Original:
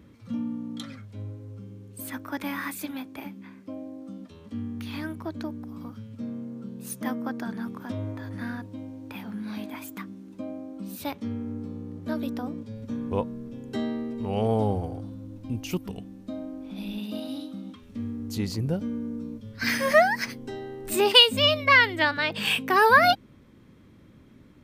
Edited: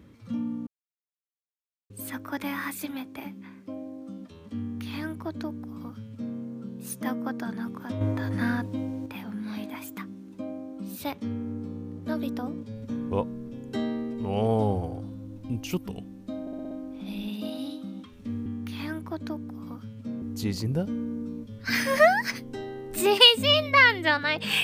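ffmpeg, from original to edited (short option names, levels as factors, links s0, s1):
-filter_complex "[0:a]asplit=12[s0][s1][s2][s3][s4][s5][s6][s7][s8][s9][s10][s11];[s0]atrim=end=0.67,asetpts=PTS-STARTPTS,afade=t=out:st=0.666:d=0.004:c=hsin[s12];[s1]atrim=start=0.67:end=1.9,asetpts=PTS-STARTPTS,volume=0[s13];[s2]atrim=start=1.9:end=8.012,asetpts=PTS-STARTPTS,afade=t=in:d=0.004:c=hsin[s14];[s3]atrim=start=8.008:end=9.062,asetpts=PTS-STARTPTS,volume=2.24[s15];[s4]atrim=start=9.058:end=16.472[s16];[s5]atrim=start=16.408:end=16.472[s17];[s6]atrim=start=16.408:end=16.472[s18];[s7]atrim=start=16.408:end=16.472[s19];[s8]atrim=start=16.408:end=16.472[s20];[s9]atrim=start=16.408:end=18.162[s21];[s10]atrim=start=4.598:end=6.362[s22];[s11]atrim=start=18.158[s23];[s12][s13][s14]concat=n=3:v=0:a=1[s24];[s24][s15]acrossfade=d=0.004:c1=hsin:c2=hsin[s25];[s25][s16]acrossfade=d=0.004:c1=hsin:c2=hsin[s26];[s26][s17]acrossfade=d=0.004:c1=hsin:c2=hsin[s27];[s27][s18]acrossfade=d=0.004:c1=hsin:c2=hsin[s28];[s28][s19]acrossfade=d=0.004:c1=hsin:c2=hsin[s29];[s29][s20]acrossfade=d=0.004:c1=hsin:c2=hsin[s30];[s30][s21]acrossfade=d=0.004:c1=hsin:c2=hsin[s31];[s31][s22]acrossfade=d=0.004:c1=hsin:c2=hsin[s32];[s32][s23]acrossfade=d=0.004:c1=hsin:c2=hsin"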